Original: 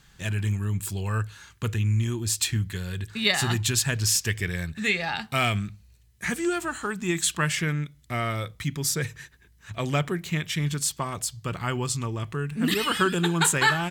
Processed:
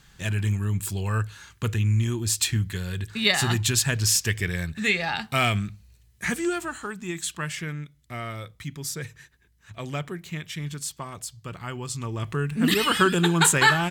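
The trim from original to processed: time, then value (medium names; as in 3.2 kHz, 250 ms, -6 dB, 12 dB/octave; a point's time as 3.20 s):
6.30 s +1.5 dB
7.13 s -6 dB
11.82 s -6 dB
12.31 s +3 dB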